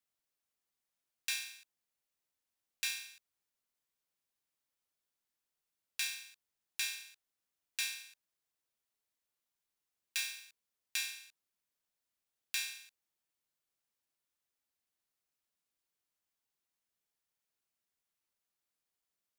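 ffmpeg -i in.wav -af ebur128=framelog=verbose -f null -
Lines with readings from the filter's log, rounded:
Integrated loudness:
  I:         -38.9 LUFS
  Threshold: -50.1 LUFS
Loudness range:
  LRA:         4.8 LU
  Threshold: -63.8 LUFS
  LRA low:   -46.1 LUFS
  LRA high:  -41.4 LUFS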